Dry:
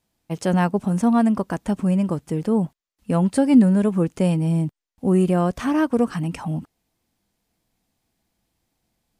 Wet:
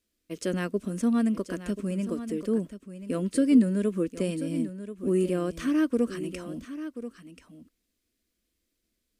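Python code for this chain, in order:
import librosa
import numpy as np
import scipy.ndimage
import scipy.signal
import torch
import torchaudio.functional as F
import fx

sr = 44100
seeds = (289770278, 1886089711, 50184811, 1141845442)

y = fx.fixed_phaser(x, sr, hz=340.0, stages=4)
y = y + 10.0 ** (-12.0 / 20.0) * np.pad(y, (int(1034 * sr / 1000.0), 0))[:len(y)]
y = F.gain(torch.from_numpy(y), -3.5).numpy()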